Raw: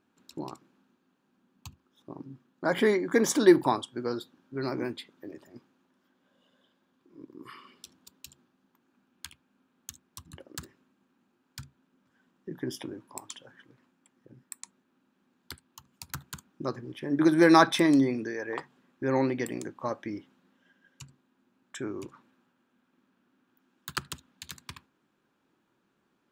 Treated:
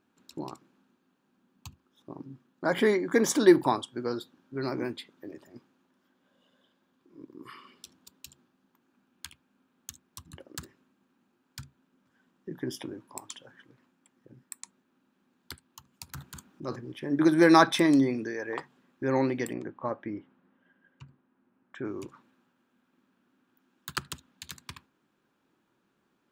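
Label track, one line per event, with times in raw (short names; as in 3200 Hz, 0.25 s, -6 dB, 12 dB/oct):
16.060000	16.760000	transient shaper attack -6 dB, sustain +6 dB
19.530000	21.850000	LPF 2000 Hz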